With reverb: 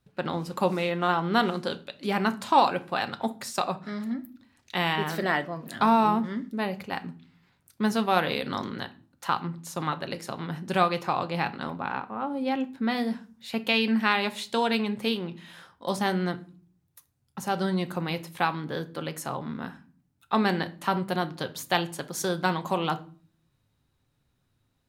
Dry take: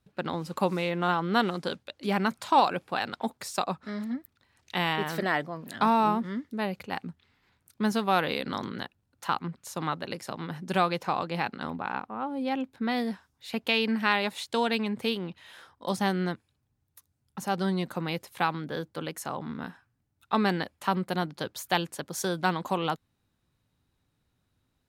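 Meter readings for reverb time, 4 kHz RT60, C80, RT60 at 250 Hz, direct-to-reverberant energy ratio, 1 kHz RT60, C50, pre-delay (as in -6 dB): 0.45 s, 0.30 s, 23.0 dB, 0.70 s, 9.0 dB, 0.40 s, 17.5 dB, 6 ms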